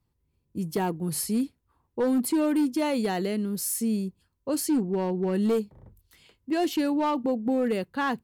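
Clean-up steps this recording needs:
clipped peaks rebuilt −19.5 dBFS

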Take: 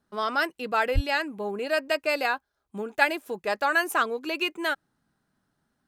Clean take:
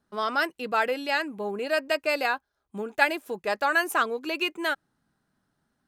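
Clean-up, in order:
high-pass at the plosives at 0:00.94

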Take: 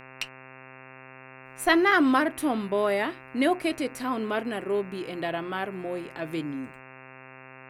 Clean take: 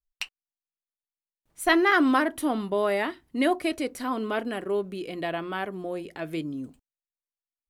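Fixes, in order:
hum removal 131 Hz, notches 21

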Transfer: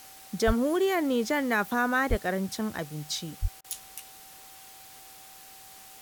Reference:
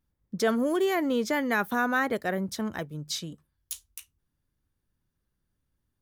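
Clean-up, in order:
notch filter 770 Hz, Q 30
high-pass at the plosives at 0:00.46/0:02.09/0:03.41
repair the gap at 0:03.61, 32 ms
broadband denoise 30 dB, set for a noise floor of −49 dBFS

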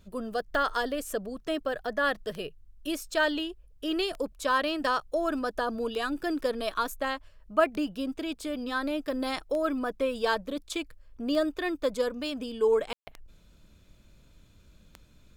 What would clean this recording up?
click removal
ambience match 0:12.93–0:13.07

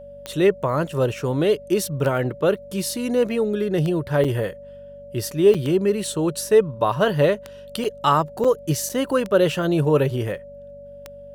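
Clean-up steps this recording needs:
click removal
hum removal 48.2 Hz, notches 5
notch filter 570 Hz, Q 30
repair the gap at 0:04.24/0:05.54/0:07.84/0:08.44/0:08.89, 6 ms

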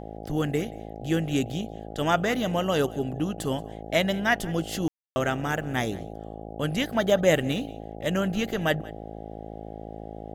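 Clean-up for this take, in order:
hum removal 54.1 Hz, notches 15
ambience match 0:04.88–0:05.16
echo removal 179 ms −21.5 dB

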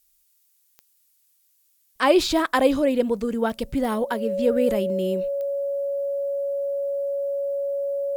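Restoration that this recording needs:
click removal
notch filter 560 Hz, Q 30
downward expander −56 dBFS, range −21 dB

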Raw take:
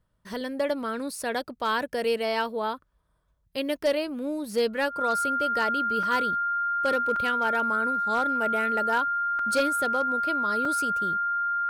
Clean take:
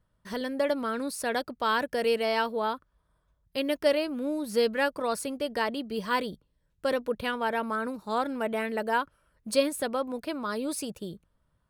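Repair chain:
clipped peaks rebuilt −17.5 dBFS
notch filter 1,400 Hz, Q 30
repair the gap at 0:06.03/0:07.16/0:09.39/0:10.65, 3.2 ms

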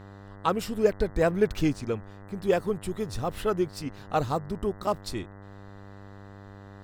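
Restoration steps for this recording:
hum removal 99.4 Hz, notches 20

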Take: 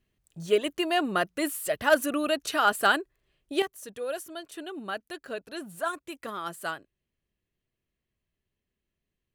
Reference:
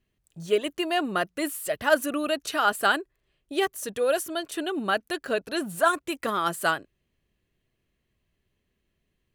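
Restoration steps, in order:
clipped peaks rebuilt −11 dBFS
level correction +9 dB, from 0:03.62

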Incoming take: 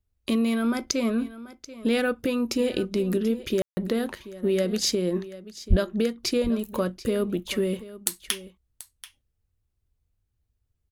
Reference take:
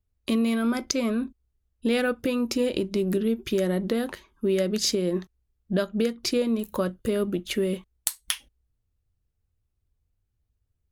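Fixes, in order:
0:05.69–0:05.81: high-pass filter 140 Hz 24 dB per octave
ambience match 0:03.62–0:03.77
echo removal 735 ms −16.5 dB

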